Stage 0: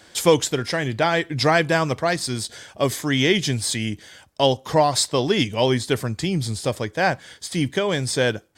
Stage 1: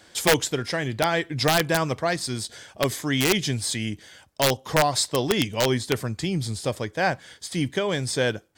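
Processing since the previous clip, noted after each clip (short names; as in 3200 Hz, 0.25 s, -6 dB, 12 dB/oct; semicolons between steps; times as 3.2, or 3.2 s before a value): wrapped overs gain 8 dB; gain -3 dB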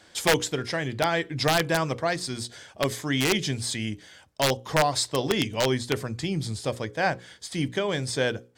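high shelf 12000 Hz -8.5 dB; notches 60/120/180/240/300/360/420/480/540 Hz; gain -1.5 dB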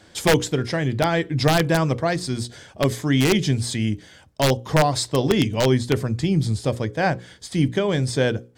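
low shelf 410 Hz +9.5 dB; gain +1 dB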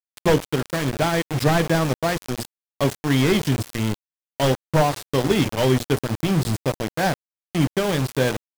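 delta modulation 64 kbps, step -34 dBFS; sample gate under -22 dBFS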